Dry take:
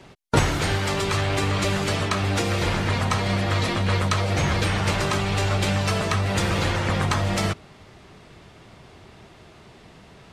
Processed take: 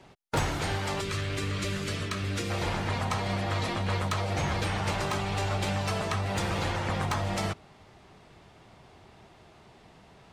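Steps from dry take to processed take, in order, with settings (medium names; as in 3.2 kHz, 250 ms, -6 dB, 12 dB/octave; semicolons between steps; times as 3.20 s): peaking EQ 810 Hz +4 dB 0.66 oct, from 1.01 s -12.5 dB, from 2.50 s +5 dB; wavefolder -12 dBFS; trim -7.5 dB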